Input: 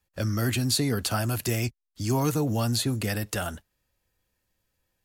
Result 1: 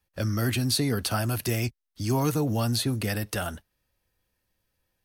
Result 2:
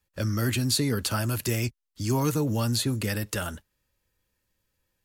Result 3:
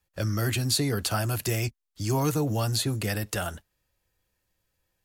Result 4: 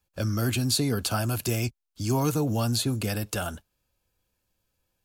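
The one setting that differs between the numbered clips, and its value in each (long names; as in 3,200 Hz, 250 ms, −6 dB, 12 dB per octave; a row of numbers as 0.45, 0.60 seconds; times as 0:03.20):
notch filter, centre frequency: 7,200, 720, 240, 1,900 Hertz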